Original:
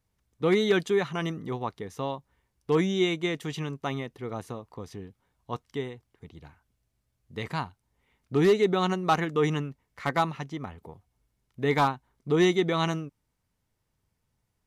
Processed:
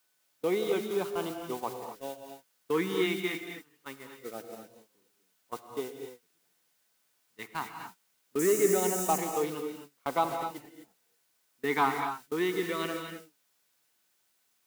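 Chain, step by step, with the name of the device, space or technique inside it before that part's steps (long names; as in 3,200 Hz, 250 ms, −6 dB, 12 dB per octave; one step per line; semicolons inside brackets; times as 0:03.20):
shortwave radio (band-pass filter 260–2,900 Hz; amplitude tremolo 0.68 Hz, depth 40%; auto-filter notch sine 0.23 Hz 550–1,900 Hz; steady tone 1,500 Hz −58 dBFS; white noise bed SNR 15 dB)
high-pass filter 190 Hz 6 dB per octave
noise gate −37 dBFS, range −25 dB
0:08.39–0:09.18: high shelf with overshoot 5,100 Hz +12 dB, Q 3
reverb whose tail is shaped and stops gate 280 ms rising, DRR 5 dB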